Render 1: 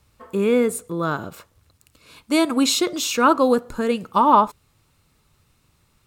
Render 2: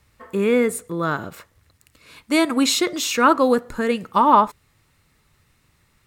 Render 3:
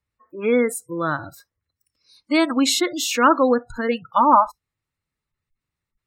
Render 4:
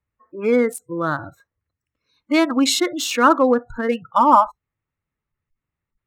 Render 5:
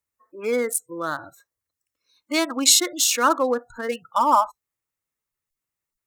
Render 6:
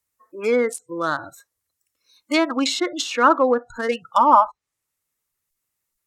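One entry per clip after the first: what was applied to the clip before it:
parametric band 1,900 Hz +8.5 dB 0.43 octaves
noise reduction from a noise print of the clip's start 23 dB; gate on every frequency bin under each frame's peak −30 dB strong
adaptive Wiener filter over 9 samples; level +1.5 dB
bass and treble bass −11 dB, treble +14 dB; level −4.5 dB
treble cut that deepens with the level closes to 1,900 Hz, closed at −17.5 dBFS; high-shelf EQ 5,300 Hz +7 dB; level +4 dB

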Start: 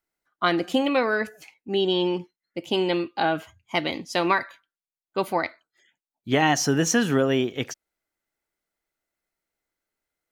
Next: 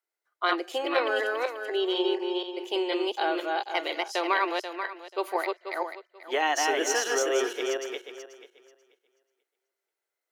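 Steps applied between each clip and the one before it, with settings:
feedback delay that plays each chunk backwards 243 ms, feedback 43%, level −1.5 dB
elliptic high-pass filter 360 Hz, stop band 50 dB
level −4 dB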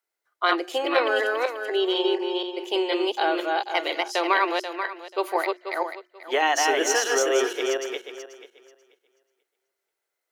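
mains-hum notches 60/120/180/240/300/360 Hz
level +4 dB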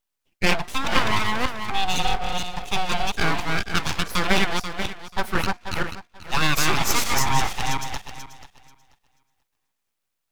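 full-wave rectification
level +4 dB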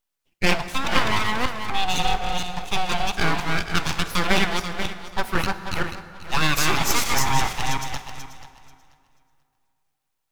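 dense smooth reverb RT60 2.5 s, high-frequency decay 0.65×, DRR 11.5 dB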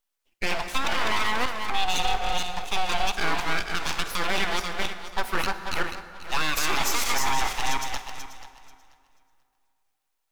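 parametric band 120 Hz −13 dB 1.6 octaves
brickwall limiter −12.5 dBFS, peak gain reduction 10 dB

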